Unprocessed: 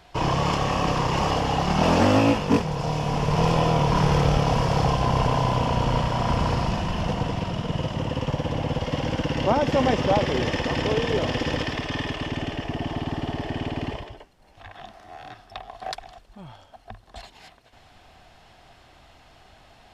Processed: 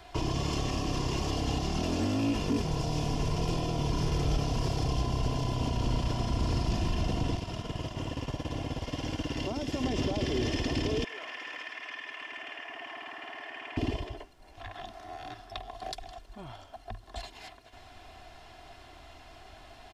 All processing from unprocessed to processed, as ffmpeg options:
-filter_complex "[0:a]asettb=1/sr,asplit=3[s0][s1][s2];[s0]atrim=end=7.374[s3];[s1]atrim=start=7.37:end=9.84,asetpts=PTS-STARTPTS,afade=t=in:d=0.004:c=qsin,afade=t=out:st=2.466:d=0.004:c=qsin,highshelf=f=3600:g=6.5,agate=range=0.0224:threshold=0.0708:ratio=3:release=100:detection=peak,acompressor=threshold=0.0316:ratio=2.5:attack=3.2:release=140:knee=1:detection=peak[s4];[s2]atrim=start=9.836[s5];[s3][s4]acrossfade=d=0.004:c1=hsin:c2=qsin[s6];[s6][s5]acrossfade=d=0.004:c1=qsin:c2=hsin,asettb=1/sr,asplit=3[s7][s8][s9];[s7]atrim=end=11.044[s10];[s8]atrim=start=11.04:end=13.77,asetpts=PTS-STARTPTS,afade=t=in:d=0.004:c=qsin,afade=t=out:st=2.726:d=0.004:c=qsin,highpass=1200,highshelf=f=3000:t=q:w=1.5:g=-10.5,acompressor=threshold=0.0158:ratio=2:attack=3.2:release=140:knee=1:detection=peak[s11];[s9]atrim=start=13.766[s12];[s10][s11]acrossfade=d=0.004:c1=hsin:c2=qsin[s13];[s13][s12]acrossfade=d=0.004:c1=qsin:c2=hsin,aecho=1:1:2.9:0.51,alimiter=limit=0.119:level=0:latency=1:release=41,acrossover=split=430|3000[s14][s15][s16];[s15]acompressor=threshold=0.00891:ratio=6[s17];[s14][s17][s16]amix=inputs=3:normalize=0"

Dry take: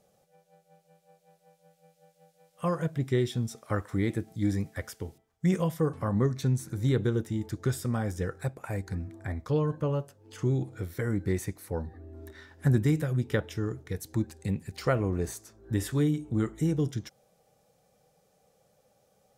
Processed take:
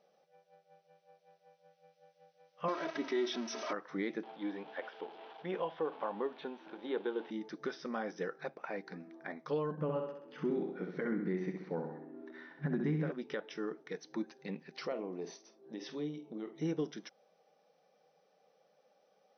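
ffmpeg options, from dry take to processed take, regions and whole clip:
-filter_complex "[0:a]asettb=1/sr,asplit=3[s0][s1][s2];[s0]atrim=end=2.684[s3];[s1]atrim=start=2.68:end=3.73,asetpts=PTS-STARTPTS,afade=t=in:d=0.004:c=qsin,afade=t=out:st=1.046:d=0.004:c=qsin,aeval=exprs='val(0)+0.5*0.0188*sgn(val(0))':c=same,aecho=1:1:3.1:0.94,atrim=end_sample=46305[s4];[s2]atrim=start=3.726[s5];[s3][s4]acrossfade=d=0.004:c1=hsin:c2=qsin[s6];[s6][s5]acrossfade=d=0.004:c1=qsin:c2=hsin,asettb=1/sr,asplit=3[s7][s8][s9];[s7]atrim=end=4.234[s10];[s8]atrim=start=4.23:end=7.31,asetpts=PTS-STARTPTS,afade=t=in:d=0.004:c=qsin,afade=t=out:st=3.076:d=0.004:c=qsin,aeval=exprs='val(0)+0.5*0.00841*sgn(val(0))':c=same,acrossover=split=2700[s11][s12];[s12]acompressor=threshold=0.00447:ratio=4:attack=1:release=60[s13];[s11][s13]amix=inputs=2:normalize=0,highpass=330,equalizer=f=860:t=q:w=4:g=7,equalizer=f=1200:t=q:w=4:g=-4,equalizer=f=2000:t=q:w=4:g=-7,equalizer=f=3300:t=q:w=4:g=5,lowpass=f=3500:w=0.5412,lowpass=f=3500:w=1.3066[s14];[s9]atrim=start=7.306[s15];[s10][s14]acrossfade=d=0.004:c1=hsin:c2=qsin[s16];[s16][s15]acrossfade=d=0.004:c1=qsin:c2=hsin,asettb=1/sr,asplit=3[s17][s18][s19];[s17]atrim=end=9.714[s20];[s18]atrim=start=9.71:end=13.12,asetpts=PTS-STARTPTS,afade=t=in:d=0.004:c=qsin,afade=t=out:st=3.406:d=0.004:c=qsin,bass=f=250:g=13,treble=f=4000:g=-15,aecho=1:1:65|130|195|260|325|390:0.501|0.261|0.136|0.0705|0.0366|0.0191,atrim=end_sample=150381[s21];[s19]atrim=start=13.116[s22];[s20][s21]acrossfade=d=0.004:c1=hsin:c2=qsin[s23];[s23][s22]acrossfade=d=0.004:c1=qsin:c2=hsin,asettb=1/sr,asplit=3[s24][s25][s26];[s24]atrim=end=14.864[s27];[s25]atrim=start=14.86:end=16.62,asetpts=PTS-STARTPTS,afade=t=in:d=0.004:c=qsin,afade=t=out:st=1.756:d=0.004:c=qsin,equalizer=f=1500:t=o:w=0.73:g=-13,acompressor=threshold=0.0398:ratio=6:attack=3.2:release=140:knee=1:detection=peak,asplit=2[s28][s29];[s29]adelay=48,volume=0.251[s30];[s28][s30]amix=inputs=2:normalize=0,atrim=end_sample=77616[s31];[s26]atrim=start=16.616[s32];[s27][s31]acrossfade=d=0.004:c1=hsin:c2=qsin[s33];[s33][s32]acrossfade=d=0.004:c1=qsin:c2=hsin,afftfilt=real='re*between(b*sr/4096,140,6200)':imag='im*between(b*sr/4096,140,6200)':win_size=4096:overlap=0.75,bass=f=250:g=-13,treble=f=4000:g=-5,alimiter=limit=0.0631:level=0:latency=1:release=169,volume=0.841"

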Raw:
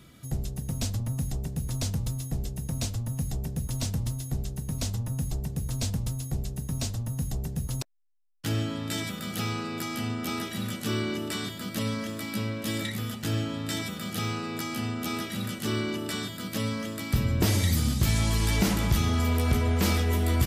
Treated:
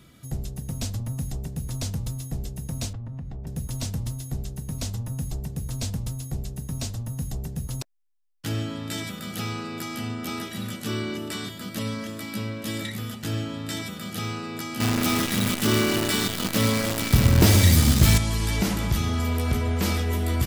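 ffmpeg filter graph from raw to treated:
-filter_complex "[0:a]asettb=1/sr,asplit=3[s0][s1][s2];[s0]atrim=end=2.934[s3];[s1]atrim=start=2.93:end=3.47,asetpts=PTS-STARTPTS,afade=t=in:d=0.004:c=qsin,afade=t=out:st=0.536:d=0.004:c=qsin,lowpass=1900,acompressor=threshold=0.0251:ratio=4:attack=3.2:release=140:knee=1:detection=peak[s4];[s2]atrim=start=3.466[s5];[s3][s4]acrossfade=d=0.004:c1=hsin:c2=qsin[s6];[s6][s5]acrossfade=d=0.004:c1=qsin:c2=hsin,asettb=1/sr,asplit=3[s7][s8][s9];[s7]atrim=end=14.804[s10];[s8]atrim=start=14.8:end=18.18,asetpts=PTS-STARTPTS,afade=t=in:d=0.004:c=qsin,afade=t=out:st=3.376:d=0.004:c=qsin,aecho=1:1:121|242|363|484|605|726:0.282|0.149|0.0792|0.042|0.0222|0.0118,atrim=end_sample=149058,acontrast=89,acrusher=bits=5:dc=4:mix=0:aa=0.000001[s11];[s9]atrim=start=18.176[s12];[s10][s11]acrossfade=d=0.004:c1=hsin:c2=qsin[s13];[s13][s12]acrossfade=d=0.004:c1=qsin:c2=hsin"

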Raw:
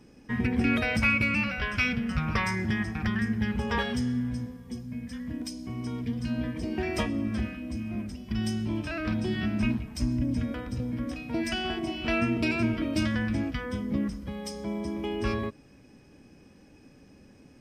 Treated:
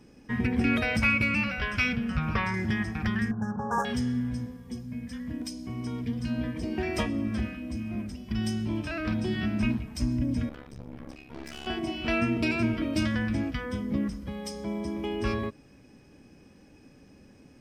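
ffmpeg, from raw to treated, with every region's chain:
-filter_complex "[0:a]asettb=1/sr,asplit=3[s0][s1][s2];[s0]atrim=end=1.964[s3];[s1]atrim=start=1.96:end=2.54,asetpts=PTS-STARTPTS,afade=t=in:d=0.004:c=qsin,afade=t=out:st=0.576:d=0.004:c=qsin,acrossover=split=3900[s4][s5];[s5]acompressor=threshold=0.002:ratio=4:attack=1:release=60[s6];[s4][s6]amix=inputs=2:normalize=0,bandreject=f=2000:w=14[s7];[s2]atrim=start=2.536[s8];[s3][s7]acrossfade=d=0.004:c1=hsin:c2=qsin[s9];[s9][s8]acrossfade=d=0.004:c1=qsin:c2=hsin,asettb=1/sr,asplit=3[s10][s11][s12];[s10]atrim=end=3.314[s13];[s11]atrim=start=3.31:end=3.85,asetpts=PTS-STARTPTS,afade=t=in:d=0.004:c=qsin,afade=t=out:st=0.536:d=0.004:c=qsin,highpass=f=110:w=0.5412,highpass=f=110:w=1.3066,equalizer=f=240:t=q:w=4:g=-4,equalizer=f=370:t=q:w=4:g=-7,equalizer=f=760:t=q:w=4:g=8,equalizer=f=1100:t=q:w=4:g=6,lowpass=f=4100:w=0.5412,lowpass=f=4100:w=1.3066,adynamicsmooth=sensitivity=5:basefreq=890,asuperstop=centerf=3000:order=20:qfactor=0.8[s14];[s12]atrim=start=3.846[s15];[s13][s14]acrossfade=d=0.004:c1=hsin:c2=qsin[s16];[s16][s15]acrossfade=d=0.004:c1=qsin:c2=hsin,asettb=1/sr,asplit=3[s17][s18][s19];[s17]atrim=end=10.494[s20];[s18]atrim=start=10.49:end=11.67,asetpts=PTS-STARTPTS,afade=t=in:d=0.004:c=qsin,afade=t=out:st=1.176:d=0.004:c=qsin,bandreject=f=50:t=h:w=6,bandreject=f=100:t=h:w=6,bandreject=f=150:t=h:w=6,bandreject=f=200:t=h:w=6,bandreject=f=250:t=h:w=6,bandreject=f=300:t=h:w=6,bandreject=f=350:t=h:w=6,bandreject=f=400:t=h:w=6,aeval=exprs='(tanh(56.2*val(0)+0.8)-tanh(0.8))/56.2':c=same,tremolo=f=70:d=0.947[s21];[s19]atrim=start=11.666[s22];[s20][s21]acrossfade=d=0.004:c1=hsin:c2=qsin[s23];[s23][s22]acrossfade=d=0.004:c1=qsin:c2=hsin"

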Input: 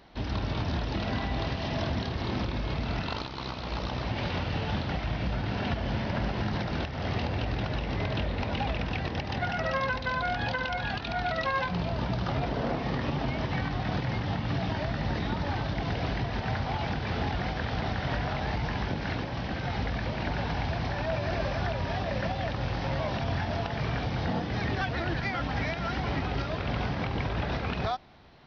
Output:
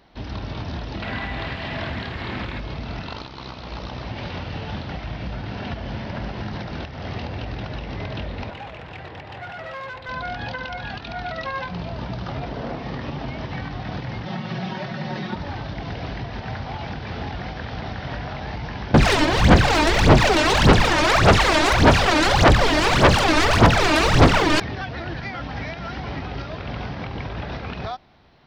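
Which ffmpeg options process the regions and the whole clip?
-filter_complex "[0:a]asettb=1/sr,asplit=3[s0][s1][s2];[s0]atrim=end=1.024[s3];[s1]atrim=start=1.02:end=2.6,asetpts=PTS-STARTPTS,afade=t=in:d=0.004:c=qsin,afade=t=out:st=1.576:d=0.004:c=qsin,equalizer=f=1900:t=o:w=1.4:g=9,acrusher=bits=8:dc=4:mix=0:aa=0.000001,lowpass=f=4800:w=0.5412,lowpass=f=4800:w=1.3066[s4];[s2]atrim=start=2.596[s5];[s3][s4]acrossfade=d=0.004:c1=hsin:c2=qsin[s6];[s6][s5]acrossfade=d=0.004:c1=qsin:c2=hsin,asettb=1/sr,asplit=3[s7][s8][s9];[s7]atrim=end=8.504[s10];[s8]atrim=start=8.5:end=10.09,asetpts=PTS-STARTPTS,afade=t=in:d=0.004:c=qsin,afade=t=out:st=1.586:d=0.004:c=qsin,equalizer=f=220:w=1.9:g=-12.5,asoftclip=type=hard:threshold=0.0282,highpass=100,lowpass=3300[s11];[s9]atrim=start=10.086[s12];[s10][s11]acrossfade=d=0.004:c1=hsin:c2=qsin[s13];[s13][s12]acrossfade=d=0.004:c1=qsin:c2=hsin,asettb=1/sr,asplit=3[s14][s15][s16];[s14]atrim=end=14.254[s17];[s15]atrim=start=14.25:end=15.35,asetpts=PTS-STARTPTS,afade=t=in:d=0.004:c=qsin,afade=t=out:st=1.096:d=0.004:c=qsin,highpass=f=110:w=0.5412,highpass=f=110:w=1.3066,aecho=1:1:5.4:0.93,atrim=end_sample=48510[s18];[s16]atrim=start=15.346[s19];[s17][s18]acrossfade=d=0.004:c1=hsin:c2=qsin[s20];[s20][s19]acrossfade=d=0.004:c1=qsin:c2=hsin,asettb=1/sr,asplit=3[s21][s22][s23];[s21]atrim=end=18.944[s24];[s22]atrim=start=18.94:end=24.6,asetpts=PTS-STARTPTS,afade=t=in:d=0.004:c=qsin,afade=t=out:st=5.656:d=0.004:c=qsin,aeval=exprs='0.126*sin(PI/2*5.01*val(0)/0.126)':c=same,aphaser=in_gain=1:out_gain=1:delay=3.3:decay=0.77:speed=1.7:type=sinusoidal[s25];[s23]atrim=start=24.596[s26];[s24][s25]acrossfade=d=0.004:c1=hsin:c2=qsin[s27];[s27][s26]acrossfade=d=0.004:c1=qsin:c2=hsin"

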